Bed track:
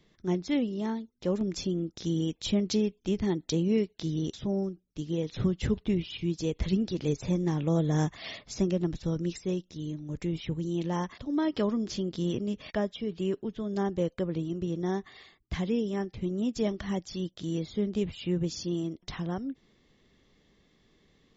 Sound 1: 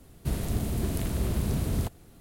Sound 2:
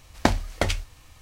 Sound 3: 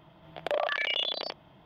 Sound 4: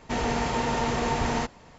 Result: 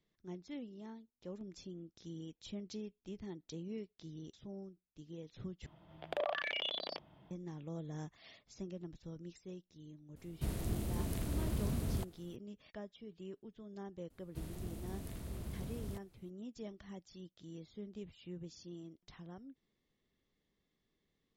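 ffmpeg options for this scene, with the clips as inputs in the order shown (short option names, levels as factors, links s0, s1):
-filter_complex "[1:a]asplit=2[s0][s1];[0:a]volume=0.126[s2];[3:a]lowshelf=f=460:g=5[s3];[s2]asplit=2[s4][s5];[s4]atrim=end=5.664[s6];[s3]atrim=end=1.65,asetpts=PTS-STARTPTS,volume=0.355[s7];[s5]atrim=start=7.306[s8];[s0]atrim=end=2.2,asetpts=PTS-STARTPTS,volume=0.376,afade=t=in:d=0.004:c=hsin,afade=t=out:st=2.196:d=0.004:c=hsin,adelay=10160[s9];[s1]atrim=end=2.2,asetpts=PTS-STARTPTS,volume=0.158,afade=t=in:d=0.004:c=hsin,afade=t=out:st=2.196:d=0.004:c=hsin,adelay=14100[s10];[s6][s7]acrossfade=d=0.004:c1=hsin:c2=hsin[s11];[s11][s8]acrossfade=d=0.004:c1=hsin:c2=hsin[s12];[s12][s9][s10]amix=inputs=3:normalize=0"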